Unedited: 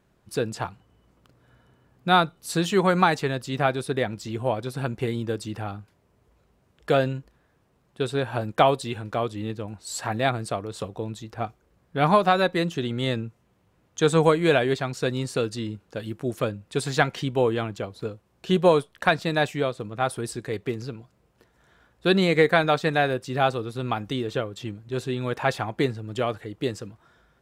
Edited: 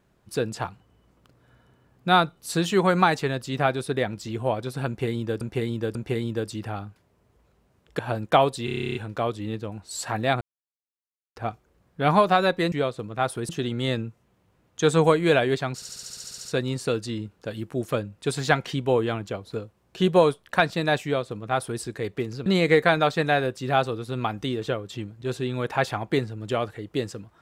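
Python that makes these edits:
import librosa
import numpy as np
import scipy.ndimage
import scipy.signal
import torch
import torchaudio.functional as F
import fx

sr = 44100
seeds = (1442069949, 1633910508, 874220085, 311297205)

y = fx.edit(x, sr, fx.repeat(start_s=4.87, length_s=0.54, count=3),
    fx.cut(start_s=6.91, length_s=1.34),
    fx.stutter(start_s=8.91, slice_s=0.03, count=11),
    fx.silence(start_s=10.37, length_s=0.95),
    fx.stutter(start_s=14.94, slice_s=0.07, count=11),
    fx.duplicate(start_s=19.53, length_s=0.77, to_s=12.68),
    fx.cut(start_s=20.95, length_s=1.18), tone=tone)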